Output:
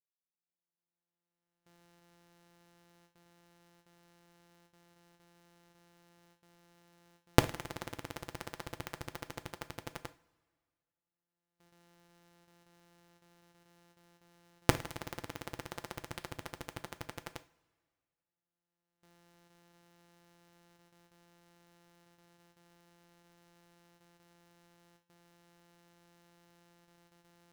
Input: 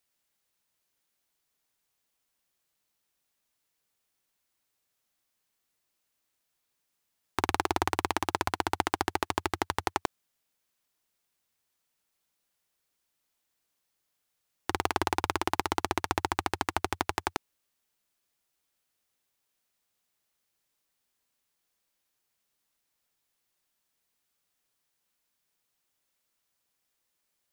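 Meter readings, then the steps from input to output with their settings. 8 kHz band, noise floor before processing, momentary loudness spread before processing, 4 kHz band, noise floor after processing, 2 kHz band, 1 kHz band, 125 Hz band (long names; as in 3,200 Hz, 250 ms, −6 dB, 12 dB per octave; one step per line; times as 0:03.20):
−6.5 dB, −80 dBFS, 6 LU, −7.5 dB, below −85 dBFS, −9.0 dB, −13.5 dB, +1.5 dB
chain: samples sorted by size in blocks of 256 samples
camcorder AGC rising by 18 dB per second
noise gate with hold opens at −39 dBFS
coupled-rooms reverb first 0.36 s, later 1.8 s, from −19 dB, DRR 11 dB
level −15.5 dB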